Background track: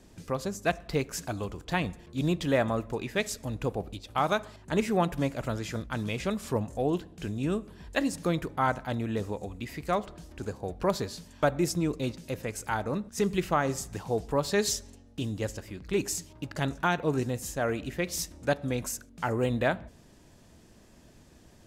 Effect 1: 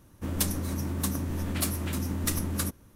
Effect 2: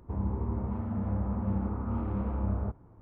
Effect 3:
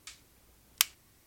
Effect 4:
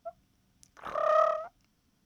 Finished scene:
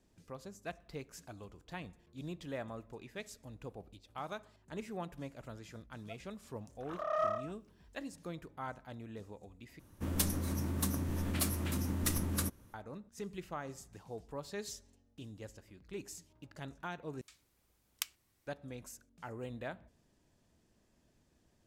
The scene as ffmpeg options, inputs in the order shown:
ffmpeg -i bed.wav -i cue0.wav -i cue1.wav -i cue2.wav -i cue3.wav -filter_complex "[0:a]volume=-16dB,asplit=3[link_01][link_02][link_03];[link_01]atrim=end=9.794[link_04];[1:a]atrim=end=2.95,asetpts=PTS-STARTPTS,volume=-4.5dB[link_05];[link_02]atrim=start=12.736:end=17.214[link_06];[3:a]atrim=end=1.26,asetpts=PTS-STARTPTS,volume=-12.5dB[link_07];[link_03]atrim=start=18.466[link_08];[4:a]atrim=end=2.05,asetpts=PTS-STARTPTS,volume=-8.5dB,afade=type=in:duration=0.004:curve=hsin,afade=type=out:start_time=2.046:duration=0.004:curve=hsin,adelay=6040[link_09];[link_04][link_05]acrossfade=duration=0.004:curve1=hsin:curve2=hsin[link_10];[link_10][link_06]acrossfade=duration=0.004:curve1=hsin:curve2=hsin[link_11];[link_11][link_07]acrossfade=duration=0.004:curve1=hsin:curve2=hsin[link_12];[link_12][link_08]acrossfade=duration=0.004:curve1=hsin:curve2=hsin[link_13];[link_13][link_09]amix=inputs=2:normalize=0" out.wav

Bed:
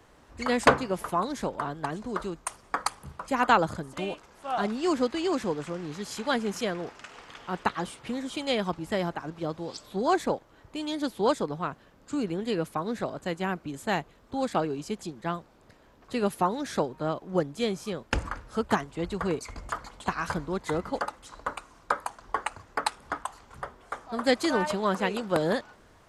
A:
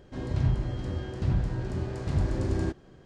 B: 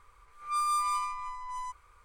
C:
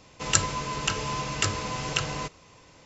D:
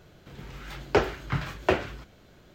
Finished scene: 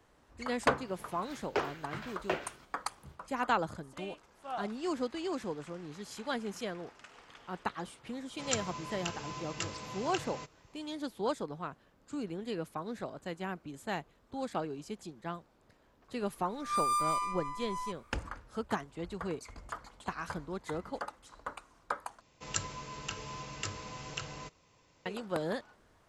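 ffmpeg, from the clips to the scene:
ffmpeg -i bed.wav -i cue0.wav -i cue1.wav -i cue2.wav -i cue3.wav -filter_complex "[3:a]asplit=2[link_01][link_02];[0:a]volume=-8.5dB[link_03];[4:a]highpass=frequency=340:poles=1[link_04];[link_01]highpass=72[link_05];[link_03]asplit=2[link_06][link_07];[link_06]atrim=end=22.214[link_08];[link_02]atrim=end=2.85,asetpts=PTS-STARTPTS,volume=-12.5dB[link_09];[link_07]atrim=start=25.056[link_10];[link_04]atrim=end=2.54,asetpts=PTS-STARTPTS,volume=-8.5dB,afade=type=in:duration=0.004:curve=hsin,afade=type=out:start_time=2.536:duration=0.004:curve=hsin,adelay=610[link_11];[link_05]atrim=end=2.85,asetpts=PTS-STARTPTS,volume=-12dB,afade=type=in:duration=0.004:curve=hsin,afade=type=out:start_time=2.846:duration=0.004:curve=hsin,adelay=360738S[link_12];[2:a]atrim=end=2.04,asetpts=PTS-STARTPTS,volume=-1.5dB,afade=type=in:duration=0.004:curve=hsin,afade=type=out:start_time=2.036:duration=0.004:curve=hsin,adelay=714420S[link_13];[link_08][link_09]acrossfade=duration=0.004:curve1=hsin:curve2=hsin[link_14];[link_14][link_10]acrossfade=duration=0.004:curve1=hsin:curve2=hsin[link_15];[link_15][link_11][link_12][link_13]amix=inputs=4:normalize=0" out.wav

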